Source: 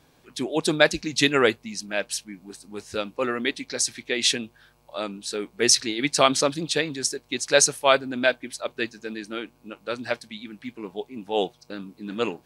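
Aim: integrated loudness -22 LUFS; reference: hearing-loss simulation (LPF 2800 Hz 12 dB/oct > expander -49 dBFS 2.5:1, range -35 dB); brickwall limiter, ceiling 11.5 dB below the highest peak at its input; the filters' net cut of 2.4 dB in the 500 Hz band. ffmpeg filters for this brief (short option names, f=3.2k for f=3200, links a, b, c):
-af "equalizer=f=500:t=o:g=-3,alimiter=limit=-13.5dB:level=0:latency=1,lowpass=2.8k,agate=range=-35dB:threshold=-49dB:ratio=2.5,volume=9.5dB"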